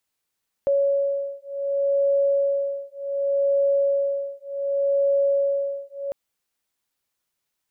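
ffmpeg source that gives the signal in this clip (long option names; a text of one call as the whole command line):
ffmpeg -f lavfi -i "aevalsrc='0.075*(sin(2*PI*558*t)+sin(2*PI*558.67*t))':duration=5.45:sample_rate=44100" out.wav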